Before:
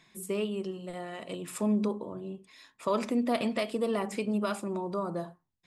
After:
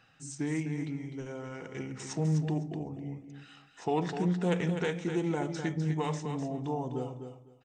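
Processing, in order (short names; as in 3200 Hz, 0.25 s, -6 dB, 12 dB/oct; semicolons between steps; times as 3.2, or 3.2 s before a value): feedback echo 0.187 s, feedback 19%, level -8 dB; speed mistake 45 rpm record played at 33 rpm; Doppler distortion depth 0.12 ms; gain -1.5 dB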